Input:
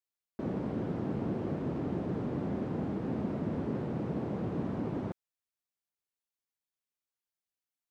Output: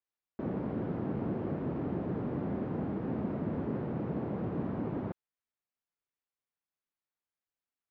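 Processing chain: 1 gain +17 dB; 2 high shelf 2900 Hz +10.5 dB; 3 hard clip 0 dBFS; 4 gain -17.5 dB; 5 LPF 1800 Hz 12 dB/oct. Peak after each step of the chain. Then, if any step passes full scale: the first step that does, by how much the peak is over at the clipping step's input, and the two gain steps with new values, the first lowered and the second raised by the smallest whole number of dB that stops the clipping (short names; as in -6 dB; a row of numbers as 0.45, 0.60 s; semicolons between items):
-5.0, -5.0, -5.0, -22.5, -22.5 dBFS; no overload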